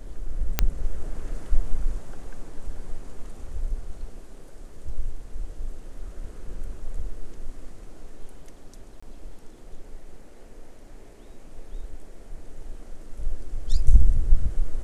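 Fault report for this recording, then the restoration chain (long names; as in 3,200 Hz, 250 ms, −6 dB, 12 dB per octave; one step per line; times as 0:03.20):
0:00.59: click −4 dBFS
0:09.00–0:09.03: drop-out 25 ms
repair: click removal
repair the gap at 0:09.00, 25 ms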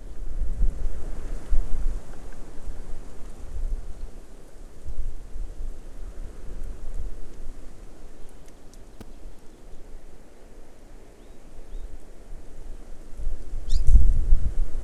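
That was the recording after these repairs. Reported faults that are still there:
none of them is left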